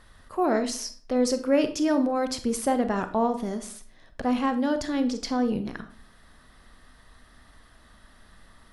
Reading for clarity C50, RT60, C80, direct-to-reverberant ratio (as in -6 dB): 12.5 dB, 0.45 s, 16.5 dB, 9.0 dB